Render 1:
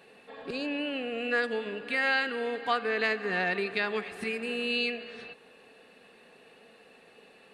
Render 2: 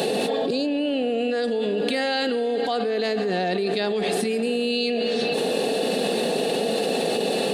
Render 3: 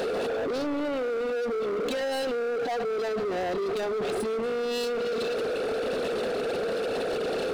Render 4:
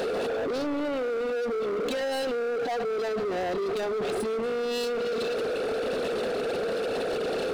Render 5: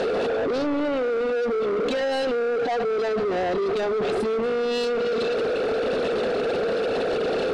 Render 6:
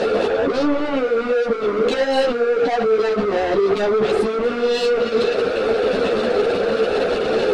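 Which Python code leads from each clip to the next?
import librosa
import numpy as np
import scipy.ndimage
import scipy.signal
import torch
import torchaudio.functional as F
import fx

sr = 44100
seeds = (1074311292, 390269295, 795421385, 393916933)

y1 = scipy.signal.sosfilt(scipy.signal.butter(4, 150.0, 'highpass', fs=sr, output='sos'), x)
y1 = fx.band_shelf(y1, sr, hz=1600.0, db=-13.5, octaves=1.7)
y1 = fx.env_flatten(y1, sr, amount_pct=100)
y1 = y1 * 10.0 ** (4.5 / 20.0)
y2 = fx.envelope_sharpen(y1, sr, power=1.5)
y2 = np.clip(y2, -10.0 ** (-27.0 / 20.0), 10.0 ** (-27.0 / 20.0))
y3 = y2
y4 = fx.air_absorb(y3, sr, metres=77.0)
y4 = y4 * 10.0 ** (5.0 / 20.0)
y5 = fx.ensemble(y4, sr)
y5 = y5 * 10.0 ** (8.5 / 20.0)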